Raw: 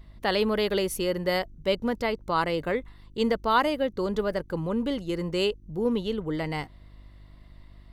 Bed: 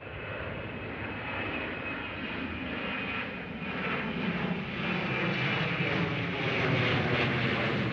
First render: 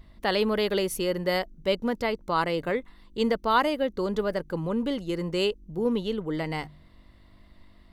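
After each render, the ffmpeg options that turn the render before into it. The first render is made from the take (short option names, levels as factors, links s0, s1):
-af "bandreject=f=50:t=h:w=4,bandreject=f=100:t=h:w=4,bandreject=f=150:t=h:w=4"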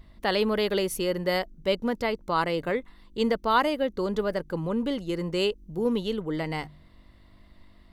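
-filter_complex "[0:a]asettb=1/sr,asplit=3[s0][s1][s2];[s0]atrim=end=5.584[s3];[s1]atrim=start=5.58:end=6.22,asetpts=PTS-STARTPTS,afade=t=in:d=0.004:c=qsin,afade=t=out:st=0.636:d=0.004:c=qsin,highshelf=f=4200:g=4.5[s4];[s2]atrim=start=6.216[s5];[s3][s4]acrossfade=d=0.004:c1=hsin:c2=qsin[s6];[s6][s5]acrossfade=d=0.004:c1=qsin:c2=hsin"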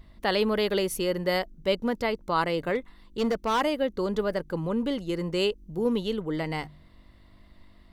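-filter_complex "[0:a]asettb=1/sr,asplit=3[s0][s1][s2];[s0]atrim=end=2.754[s3];[s1]atrim=start=2.75:end=3.61,asetpts=PTS-STARTPTS,afade=t=in:d=0.004:c=qsin,afade=t=out:st=0.856:d=0.004:c=qsin,asoftclip=type=hard:threshold=0.0891[s4];[s2]atrim=start=3.606[s5];[s3][s4]acrossfade=d=0.004:c1=hsin:c2=qsin[s6];[s6][s5]acrossfade=d=0.004:c1=qsin:c2=hsin"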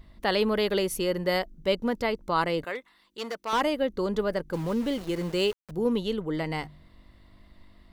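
-filter_complex "[0:a]asettb=1/sr,asplit=3[s0][s1][s2];[s0]atrim=end=2.644[s3];[s1]atrim=start=2.64:end=3.53,asetpts=PTS-STARTPTS,afade=t=in:d=0.004:c=qsin,afade=t=out:st=0.886:d=0.004:c=qsin,highpass=f=1100:p=1[s4];[s2]atrim=start=3.526[s5];[s3][s4]acrossfade=d=0.004:c1=hsin:c2=qsin[s6];[s6][s5]acrossfade=d=0.004:c1=qsin:c2=hsin,asettb=1/sr,asplit=3[s7][s8][s9];[s7]atrim=end=4.534[s10];[s8]atrim=start=4.53:end=5.71,asetpts=PTS-STARTPTS,afade=t=in:d=0.004:c=qsin,afade=t=out:st=1.176:d=0.004:c=qsin,aeval=exprs='val(0)*gte(abs(val(0)),0.0126)':c=same[s11];[s9]atrim=start=5.706[s12];[s10][s11]acrossfade=d=0.004:c1=hsin:c2=qsin[s13];[s13][s12]acrossfade=d=0.004:c1=qsin:c2=hsin"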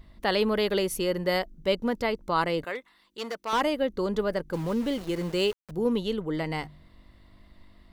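-af anull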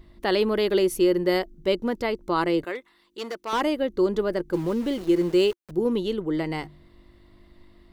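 -af "equalizer=f=350:t=o:w=0.3:g=12"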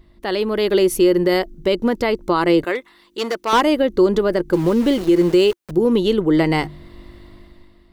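-af "dynaudnorm=f=110:g=13:m=5.01,alimiter=limit=0.447:level=0:latency=1:release=116"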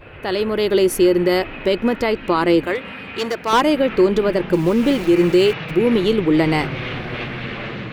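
-filter_complex "[1:a]volume=1.06[s0];[0:a][s0]amix=inputs=2:normalize=0"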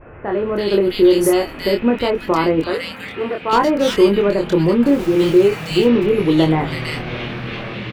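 -filter_complex "[0:a]asplit=2[s0][s1];[s1]adelay=25,volume=0.631[s2];[s0][s2]amix=inputs=2:normalize=0,acrossover=split=1900[s3][s4];[s4]adelay=330[s5];[s3][s5]amix=inputs=2:normalize=0"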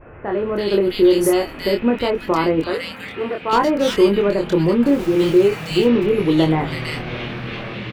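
-af "volume=0.841"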